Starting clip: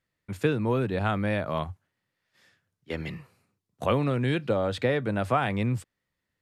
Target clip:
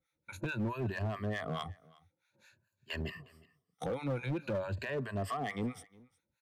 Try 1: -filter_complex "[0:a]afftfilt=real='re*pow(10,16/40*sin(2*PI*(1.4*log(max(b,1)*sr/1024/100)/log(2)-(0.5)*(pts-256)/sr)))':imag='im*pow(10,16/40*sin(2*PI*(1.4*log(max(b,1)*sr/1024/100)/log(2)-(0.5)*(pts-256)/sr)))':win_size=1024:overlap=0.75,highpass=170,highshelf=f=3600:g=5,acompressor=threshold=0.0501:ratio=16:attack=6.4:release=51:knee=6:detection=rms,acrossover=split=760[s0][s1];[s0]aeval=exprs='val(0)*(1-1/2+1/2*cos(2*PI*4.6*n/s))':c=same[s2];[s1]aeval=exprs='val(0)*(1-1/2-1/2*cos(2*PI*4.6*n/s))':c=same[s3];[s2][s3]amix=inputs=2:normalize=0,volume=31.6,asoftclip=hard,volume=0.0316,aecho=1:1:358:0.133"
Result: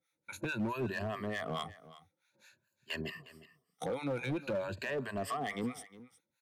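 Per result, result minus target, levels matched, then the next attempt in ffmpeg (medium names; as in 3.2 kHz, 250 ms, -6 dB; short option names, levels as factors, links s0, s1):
125 Hz band -5.0 dB; 8 kHz band +4.5 dB; echo-to-direct +6.5 dB
-filter_complex "[0:a]afftfilt=real='re*pow(10,16/40*sin(2*PI*(1.4*log(max(b,1)*sr/1024/100)/log(2)-(0.5)*(pts-256)/sr)))':imag='im*pow(10,16/40*sin(2*PI*(1.4*log(max(b,1)*sr/1024/100)/log(2)-(0.5)*(pts-256)/sr)))':win_size=1024:overlap=0.75,highpass=59,highshelf=f=3600:g=5,acompressor=threshold=0.0501:ratio=16:attack=6.4:release=51:knee=6:detection=rms,acrossover=split=760[s0][s1];[s0]aeval=exprs='val(0)*(1-1/2+1/2*cos(2*PI*4.6*n/s))':c=same[s2];[s1]aeval=exprs='val(0)*(1-1/2-1/2*cos(2*PI*4.6*n/s))':c=same[s3];[s2][s3]amix=inputs=2:normalize=0,volume=31.6,asoftclip=hard,volume=0.0316,aecho=1:1:358:0.133"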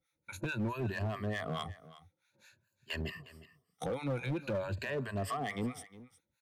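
echo-to-direct +6.5 dB; 8 kHz band +4.0 dB
-filter_complex "[0:a]afftfilt=real='re*pow(10,16/40*sin(2*PI*(1.4*log(max(b,1)*sr/1024/100)/log(2)-(0.5)*(pts-256)/sr)))':imag='im*pow(10,16/40*sin(2*PI*(1.4*log(max(b,1)*sr/1024/100)/log(2)-(0.5)*(pts-256)/sr)))':win_size=1024:overlap=0.75,highpass=59,highshelf=f=3600:g=5,acompressor=threshold=0.0501:ratio=16:attack=6.4:release=51:knee=6:detection=rms,acrossover=split=760[s0][s1];[s0]aeval=exprs='val(0)*(1-1/2+1/2*cos(2*PI*4.6*n/s))':c=same[s2];[s1]aeval=exprs='val(0)*(1-1/2-1/2*cos(2*PI*4.6*n/s))':c=same[s3];[s2][s3]amix=inputs=2:normalize=0,volume=31.6,asoftclip=hard,volume=0.0316,aecho=1:1:358:0.0631"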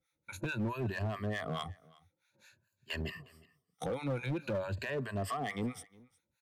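8 kHz band +4.0 dB
-filter_complex "[0:a]afftfilt=real='re*pow(10,16/40*sin(2*PI*(1.4*log(max(b,1)*sr/1024/100)/log(2)-(0.5)*(pts-256)/sr)))':imag='im*pow(10,16/40*sin(2*PI*(1.4*log(max(b,1)*sr/1024/100)/log(2)-(0.5)*(pts-256)/sr)))':win_size=1024:overlap=0.75,highpass=59,acompressor=threshold=0.0501:ratio=16:attack=6.4:release=51:knee=6:detection=rms,acrossover=split=760[s0][s1];[s0]aeval=exprs='val(0)*(1-1/2+1/2*cos(2*PI*4.6*n/s))':c=same[s2];[s1]aeval=exprs='val(0)*(1-1/2-1/2*cos(2*PI*4.6*n/s))':c=same[s3];[s2][s3]amix=inputs=2:normalize=0,volume=31.6,asoftclip=hard,volume=0.0316,aecho=1:1:358:0.0631"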